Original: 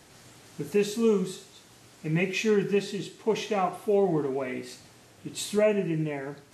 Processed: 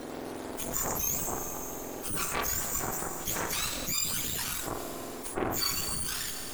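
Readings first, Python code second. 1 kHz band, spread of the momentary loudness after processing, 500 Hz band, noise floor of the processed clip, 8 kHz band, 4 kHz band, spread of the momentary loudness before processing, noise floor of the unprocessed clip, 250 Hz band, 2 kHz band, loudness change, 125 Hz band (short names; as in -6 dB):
-1.5 dB, 9 LU, -13.5 dB, -40 dBFS, +11.5 dB, +4.5 dB, 15 LU, -55 dBFS, -10.0 dB, -2.0 dB, -3.5 dB, -8.0 dB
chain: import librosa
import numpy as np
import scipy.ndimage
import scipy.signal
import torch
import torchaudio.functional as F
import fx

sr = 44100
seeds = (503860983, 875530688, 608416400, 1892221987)

y = fx.octave_mirror(x, sr, pivot_hz=1700.0)
y = fx.cheby_harmonics(y, sr, harmonics=(3, 8), levels_db=(-11, -19), full_scale_db=-16.0)
y = fx.rev_schroeder(y, sr, rt60_s=1.7, comb_ms=27, drr_db=12.0)
y = fx.env_flatten(y, sr, amount_pct=70)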